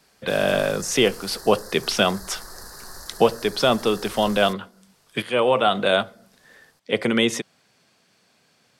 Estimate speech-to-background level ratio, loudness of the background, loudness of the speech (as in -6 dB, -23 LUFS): 17.5 dB, -39.5 LUFS, -22.0 LUFS